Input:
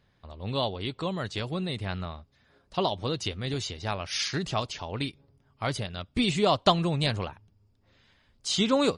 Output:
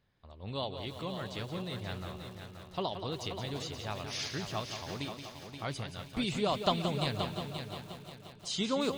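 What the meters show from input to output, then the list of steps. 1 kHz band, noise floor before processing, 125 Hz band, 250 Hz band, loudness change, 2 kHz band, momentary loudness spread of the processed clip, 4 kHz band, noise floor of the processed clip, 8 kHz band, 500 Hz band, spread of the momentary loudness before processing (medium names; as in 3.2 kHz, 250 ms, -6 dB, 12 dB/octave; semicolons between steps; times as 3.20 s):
-7.0 dB, -67 dBFS, -6.5 dB, -7.0 dB, -7.0 dB, -6.5 dB, 13 LU, -6.5 dB, -52 dBFS, -6.5 dB, -6.5 dB, 12 LU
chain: on a send: multi-head delay 176 ms, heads first and third, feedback 54%, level -9 dB; on the sum: bit-crushed delay 344 ms, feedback 55%, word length 6-bit, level -13 dB; trim -8 dB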